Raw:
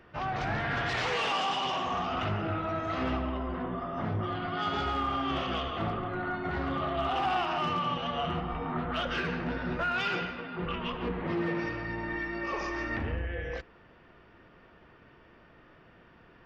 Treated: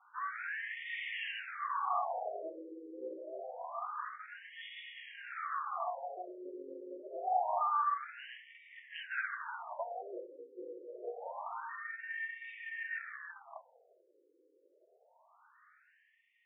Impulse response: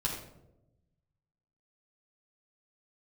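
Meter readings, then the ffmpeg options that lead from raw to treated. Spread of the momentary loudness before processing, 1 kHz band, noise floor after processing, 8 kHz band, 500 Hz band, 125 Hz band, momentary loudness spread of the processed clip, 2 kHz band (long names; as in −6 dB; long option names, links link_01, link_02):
6 LU, −6.0 dB, −71 dBFS, can't be measured, −9.0 dB, below −40 dB, 14 LU, −6.5 dB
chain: -filter_complex "[0:a]aeval=exprs='0.1*(cos(1*acos(clip(val(0)/0.1,-1,1)))-cos(1*PI/2))+0.0141*(cos(3*acos(clip(val(0)/0.1,-1,1)))-cos(3*PI/2))+0.00447*(cos(6*acos(clip(val(0)/0.1,-1,1)))-cos(6*PI/2))':channel_layout=same,acrossover=split=460 2100:gain=0.178 1 0.158[link_01][link_02][link_03];[link_01][link_02][link_03]amix=inputs=3:normalize=0,asplit=2[link_04][link_05];[1:a]atrim=start_sample=2205[link_06];[link_05][link_06]afir=irnorm=-1:irlink=0,volume=-21.5dB[link_07];[link_04][link_07]amix=inputs=2:normalize=0,afftfilt=real='re*between(b*sr/1024,380*pow(2600/380,0.5+0.5*sin(2*PI*0.26*pts/sr))/1.41,380*pow(2600/380,0.5+0.5*sin(2*PI*0.26*pts/sr))*1.41)':imag='im*between(b*sr/1024,380*pow(2600/380,0.5+0.5*sin(2*PI*0.26*pts/sr))/1.41,380*pow(2600/380,0.5+0.5*sin(2*PI*0.26*pts/sr))*1.41)':win_size=1024:overlap=0.75,volume=3.5dB"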